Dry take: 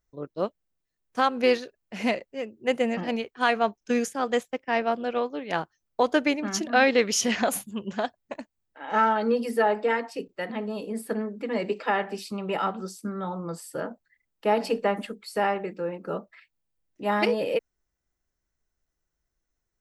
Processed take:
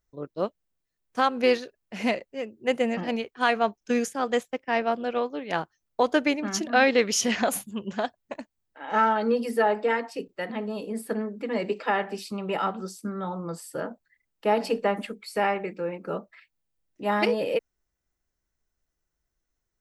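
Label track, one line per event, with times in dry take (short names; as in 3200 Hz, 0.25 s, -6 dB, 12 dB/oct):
15.040000	16.160000	bell 2300 Hz +8.5 dB 0.23 oct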